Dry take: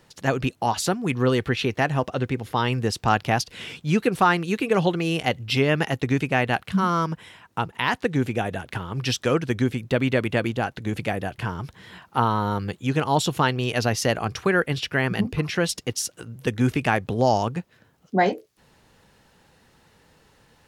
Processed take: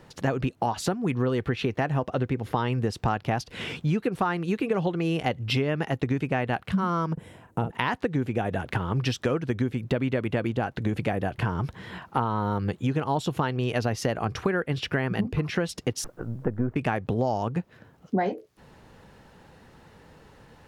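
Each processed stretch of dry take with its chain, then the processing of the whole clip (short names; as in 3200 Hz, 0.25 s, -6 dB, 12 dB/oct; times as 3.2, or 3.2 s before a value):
7.13–7.71 band shelf 2200 Hz -11 dB 3 oct + doubler 44 ms -7 dB
16.04–16.76 half-wave gain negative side -7 dB + LPF 1500 Hz 24 dB/oct + requantised 12-bit, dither triangular
whole clip: high shelf 2400 Hz -10.5 dB; compressor 6:1, threshold -30 dBFS; gain +7 dB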